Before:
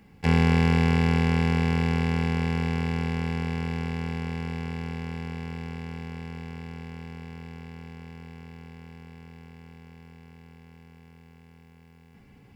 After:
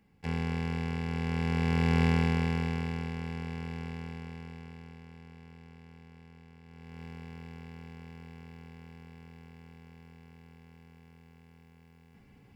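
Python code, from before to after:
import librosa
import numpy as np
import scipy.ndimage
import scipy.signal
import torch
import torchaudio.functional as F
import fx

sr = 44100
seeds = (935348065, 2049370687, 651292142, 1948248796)

y = fx.gain(x, sr, db=fx.line((1.06, -12.0), (2.04, 0.5), (3.14, -8.5), (3.89, -8.5), (5.07, -16.5), (6.62, -16.5), (7.03, -4.5)))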